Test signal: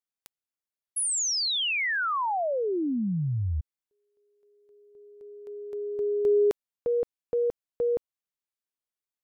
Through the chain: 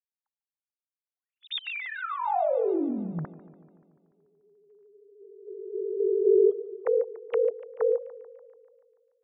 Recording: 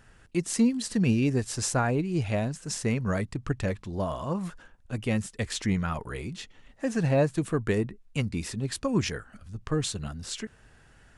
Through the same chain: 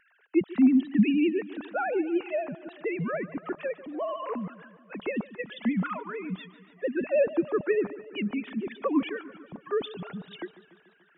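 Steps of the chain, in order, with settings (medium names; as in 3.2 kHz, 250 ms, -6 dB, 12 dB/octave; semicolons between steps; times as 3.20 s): formants replaced by sine waves; vibrato 13 Hz 71 cents; dynamic bell 1.7 kHz, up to -4 dB, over -46 dBFS, Q 2.7; modulated delay 145 ms, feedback 63%, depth 89 cents, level -17.5 dB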